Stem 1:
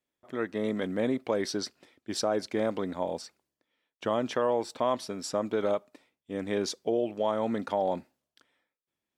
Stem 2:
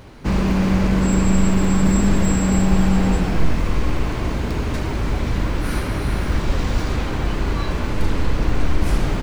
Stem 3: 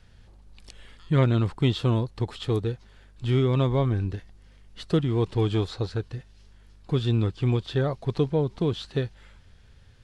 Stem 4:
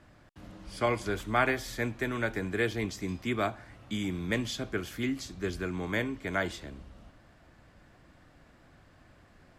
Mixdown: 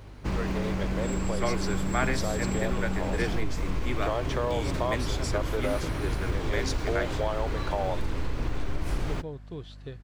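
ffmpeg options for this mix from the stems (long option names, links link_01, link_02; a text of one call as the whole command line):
ffmpeg -i stem1.wav -i stem2.wav -i stem3.wav -i stem4.wav -filter_complex "[0:a]highpass=frequency=380:width=0.5412,highpass=frequency=380:width=1.3066,volume=0.5dB[link_01];[1:a]volume=-7.5dB[link_02];[2:a]adelay=900,volume=-14dB[link_03];[3:a]adelay=600,volume=-2dB[link_04];[link_01][link_02][link_03]amix=inputs=3:normalize=0,aeval=exprs='val(0)+0.00562*(sin(2*PI*50*n/s)+sin(2*PI*2*50*n/s)/2+sin(2*PI*3*50*n/s)/3+sin(2*PI*4*50*n/s)/4+sin(2*PI*5*50*n/s)/5)':channel_layout=same,acompressor=threshold=-23dB:ratio=6,volume=0dB[link_05];[link_04][link_05]amix=inputs=2:normalize=0,equalizer=frequency=210:width=5.4:gain=-7.5" out.wav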